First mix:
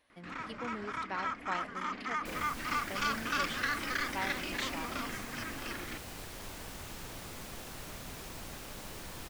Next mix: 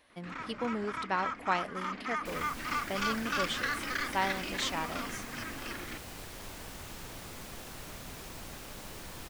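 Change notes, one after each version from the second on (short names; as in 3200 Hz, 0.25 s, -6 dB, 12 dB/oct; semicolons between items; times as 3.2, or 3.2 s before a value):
speech +7.5 dB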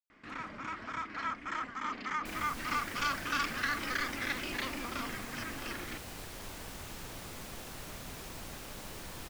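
speech: muted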